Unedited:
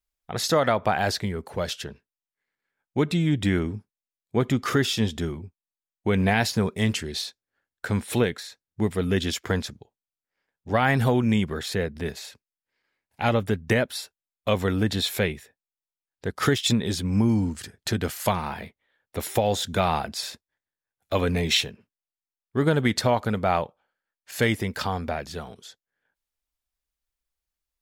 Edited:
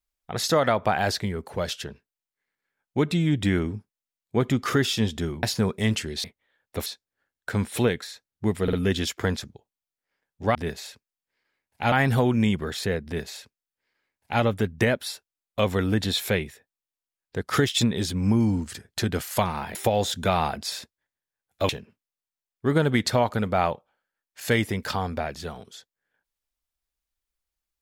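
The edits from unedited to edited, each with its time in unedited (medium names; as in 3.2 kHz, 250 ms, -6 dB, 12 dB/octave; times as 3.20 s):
5.43–6.41 s: delete
8.99 s: stutter 0.05 s, 3 plays
11.94–13.31 s: copy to 10.81 s
18.64–19.26 s: move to 7.22 s
21.20–21.60 s: delete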